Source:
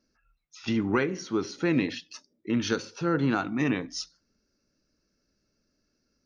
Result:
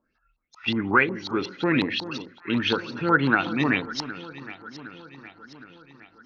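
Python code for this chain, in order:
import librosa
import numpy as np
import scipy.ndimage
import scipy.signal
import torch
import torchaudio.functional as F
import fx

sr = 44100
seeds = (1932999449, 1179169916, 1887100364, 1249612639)

y = fx.filter_lfo_lowpass(x, sr, shape='saw_up', hz=5.5, low_hz=860.0, high_hz=4500.0, q=6.6)
y = fx.rider(y, sr, range_db=10, speed_s=2.0)
y = fx.echo_alternate(y, sr, ms=382, hz=1200.0, feedback_pct=73, wet_db=-13.0)
y = F.gain(torch.from_numpy(y), 1.5).numpy()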